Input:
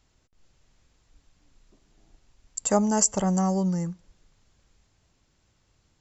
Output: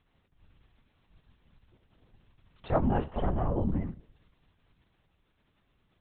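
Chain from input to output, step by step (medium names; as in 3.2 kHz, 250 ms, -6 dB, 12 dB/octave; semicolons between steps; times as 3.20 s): hum notches 50/100/150/200/250/300/350/400/450/500 Hz; Schroeder reverb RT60 0.39 s, combs from 30 ms, DRR 12.5 dB; LPC vocoder at 8 kHz whisper; trim -3.5 dB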